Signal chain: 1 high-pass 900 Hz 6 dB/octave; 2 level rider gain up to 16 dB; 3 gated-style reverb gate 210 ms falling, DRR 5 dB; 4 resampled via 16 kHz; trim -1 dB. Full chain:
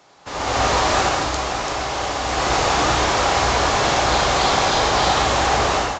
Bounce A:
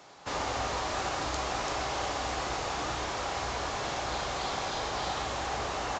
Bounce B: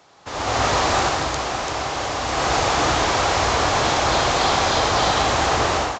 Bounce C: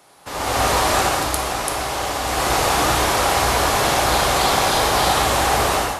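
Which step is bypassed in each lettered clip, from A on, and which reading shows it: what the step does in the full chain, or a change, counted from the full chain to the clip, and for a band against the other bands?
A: 2, momentary loudness spread change -5 LU; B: 3, loudness change -1.0 LU; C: 4, 8 kHz band +3.0 dB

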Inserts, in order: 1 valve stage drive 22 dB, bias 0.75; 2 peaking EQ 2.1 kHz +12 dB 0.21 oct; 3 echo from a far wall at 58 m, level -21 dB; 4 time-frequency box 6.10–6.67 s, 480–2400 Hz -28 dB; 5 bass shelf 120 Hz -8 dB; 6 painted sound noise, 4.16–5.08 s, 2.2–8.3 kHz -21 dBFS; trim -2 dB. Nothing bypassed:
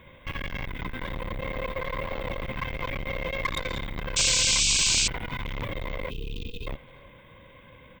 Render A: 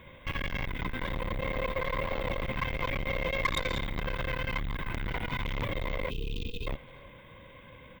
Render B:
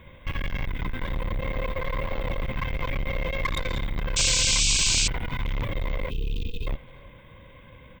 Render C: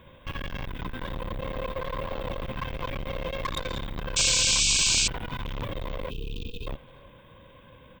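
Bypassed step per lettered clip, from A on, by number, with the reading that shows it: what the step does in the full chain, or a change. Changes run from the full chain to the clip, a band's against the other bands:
6, 8 kHz band -29.5 dB; 5, 125 Hz band +5.0 dB; 2, 2 kHz band -2.5 dB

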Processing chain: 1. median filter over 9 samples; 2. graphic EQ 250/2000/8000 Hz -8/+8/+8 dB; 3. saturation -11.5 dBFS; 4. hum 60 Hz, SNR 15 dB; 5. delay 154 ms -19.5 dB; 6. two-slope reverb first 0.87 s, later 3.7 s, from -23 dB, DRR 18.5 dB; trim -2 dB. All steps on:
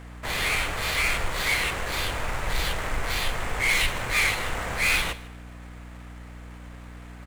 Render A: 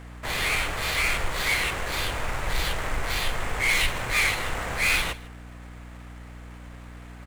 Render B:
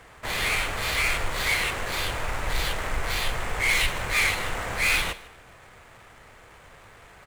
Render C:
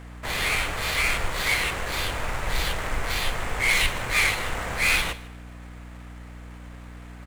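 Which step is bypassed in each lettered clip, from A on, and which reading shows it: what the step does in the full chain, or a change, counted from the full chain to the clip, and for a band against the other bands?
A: 6, echo-to-direct -16.0 dB to -19.5 dB; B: 4, 250 Hz band -2.0 dB; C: 3, distortion -22 dB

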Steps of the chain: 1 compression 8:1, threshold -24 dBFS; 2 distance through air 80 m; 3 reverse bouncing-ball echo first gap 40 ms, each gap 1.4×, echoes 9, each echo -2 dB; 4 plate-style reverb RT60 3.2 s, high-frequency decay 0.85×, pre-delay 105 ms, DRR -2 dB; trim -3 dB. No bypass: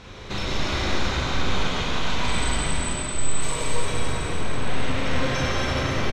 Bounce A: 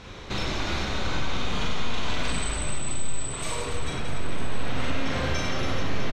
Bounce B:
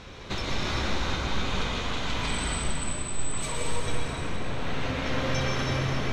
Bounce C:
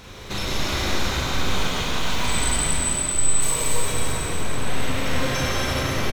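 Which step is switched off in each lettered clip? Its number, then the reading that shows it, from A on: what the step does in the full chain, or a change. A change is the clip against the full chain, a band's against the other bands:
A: 4, echo-to-direct 8.0 dB to 2.5 dB; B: 3, echo-to-direct 8.0 dB to 2.0 dB; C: 2, 8 kHz band +8.0 dB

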